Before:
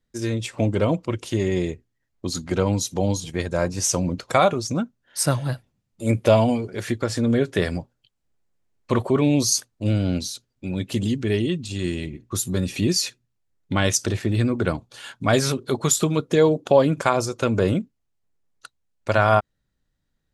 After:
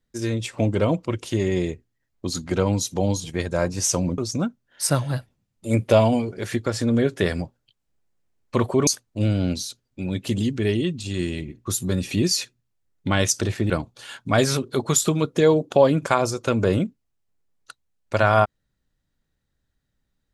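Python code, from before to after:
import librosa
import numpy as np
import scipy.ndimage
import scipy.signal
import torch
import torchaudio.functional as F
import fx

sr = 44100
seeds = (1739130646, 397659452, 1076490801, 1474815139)

y = fx.edit(x, sr, fx.cut(start_s=4.18, length_s=0.36),
    fx.cut(start_s=9.23, length_s=0.29),
    fx.cut(start_s=14.35, length_s=0.3), tone=tone)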